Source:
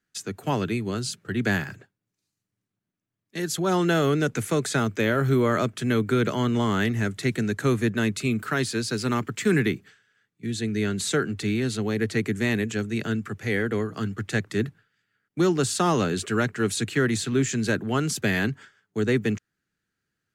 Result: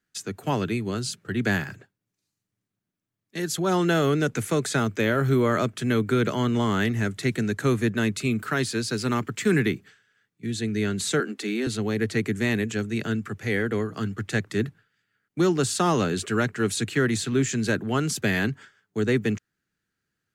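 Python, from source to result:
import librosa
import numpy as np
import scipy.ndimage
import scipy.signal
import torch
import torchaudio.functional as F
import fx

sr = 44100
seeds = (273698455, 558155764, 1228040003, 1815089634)

y = fx.steep_highpass(x, sr, hz=220.0, slope=36, at=(11.2, 11.67))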